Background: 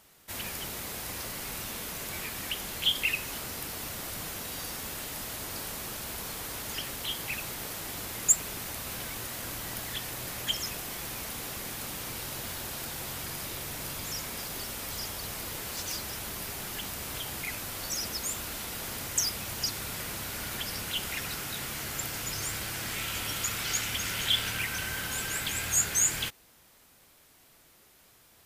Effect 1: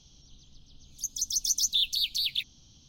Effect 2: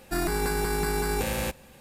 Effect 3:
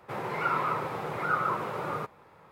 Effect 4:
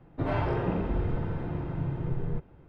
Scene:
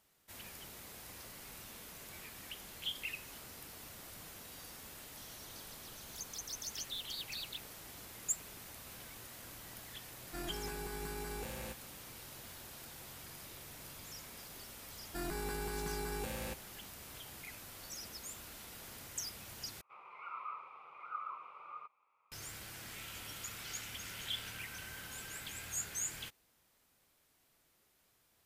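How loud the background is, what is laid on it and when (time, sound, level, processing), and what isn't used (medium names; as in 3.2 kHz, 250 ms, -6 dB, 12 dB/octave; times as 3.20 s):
background -13.5 dB
5.17 s: add 1 -16 dB + three bands compressed up and down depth 70%
10.22 s: add 2 -16 dB
15.03 s: add 2 -13 dB
19.81 s: replace with 3 -10.5 dB + two resonant band-passes 1.7 kHz, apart 1 oct
not used: 4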